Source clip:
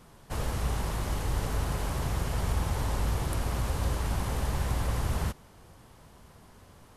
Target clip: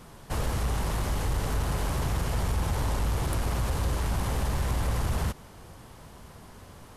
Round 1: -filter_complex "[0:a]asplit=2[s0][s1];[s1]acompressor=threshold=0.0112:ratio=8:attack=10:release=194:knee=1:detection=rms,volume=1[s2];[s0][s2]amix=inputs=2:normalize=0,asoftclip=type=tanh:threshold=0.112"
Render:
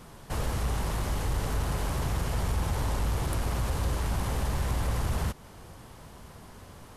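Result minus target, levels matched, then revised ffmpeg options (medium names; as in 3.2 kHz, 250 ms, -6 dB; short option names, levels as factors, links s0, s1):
compression: peak gain reduction +6 dB
-filter_complex "[0:a]asplit=2[s0][s1];[s1]acompressor=threshold=0.0251:ratio=8:attack=10:release=194:knee=1:detection=rms,volume=1[s2];[s0][s2]amix=inputs=2:normalize=0,asoftclip=type=tanh:threshold=0.112"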